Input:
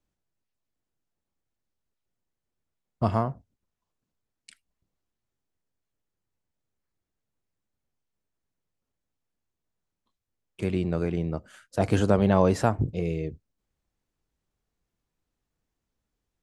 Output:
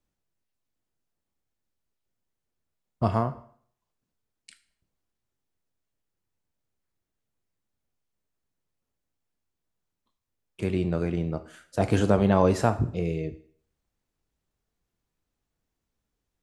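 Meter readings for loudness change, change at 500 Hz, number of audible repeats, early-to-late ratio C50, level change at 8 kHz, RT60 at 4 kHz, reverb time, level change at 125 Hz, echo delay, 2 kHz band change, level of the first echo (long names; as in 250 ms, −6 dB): 0.0 dB, 0.0 dB, no echo audible, 14.5 dB, +0.5 dB, 0.50 s, 0.55 s, 0.0 dB, no echo audible, +0.5 dB, no echo audible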